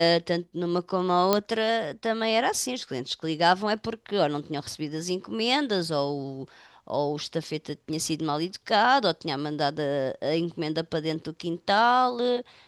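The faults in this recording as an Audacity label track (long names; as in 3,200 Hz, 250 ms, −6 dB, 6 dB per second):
1.330000	1.330000	click −7 dBFS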